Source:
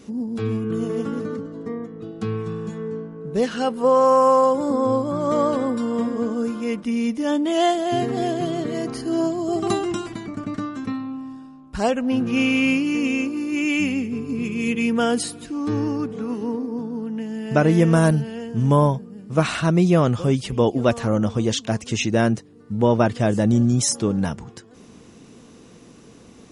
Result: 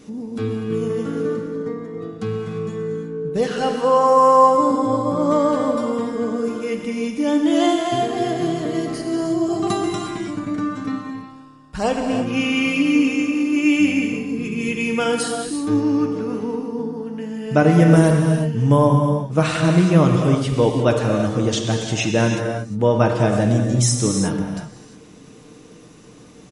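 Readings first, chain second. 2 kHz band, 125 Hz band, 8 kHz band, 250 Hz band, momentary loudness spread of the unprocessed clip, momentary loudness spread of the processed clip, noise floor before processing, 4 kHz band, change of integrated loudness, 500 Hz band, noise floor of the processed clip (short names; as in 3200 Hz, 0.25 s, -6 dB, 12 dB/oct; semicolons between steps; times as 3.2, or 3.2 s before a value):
+2.0 dB, +3.5 dB, +2.5 dB, +2.0 dB, 12 LU, 13 LU, -47 dBFS, +2.5 dB, +2.5 dB, +2.0 dB, -44 dBFS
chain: comb 6.6 ms, depth 33%; non-linear reverb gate 0.38 s flat, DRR 2 dB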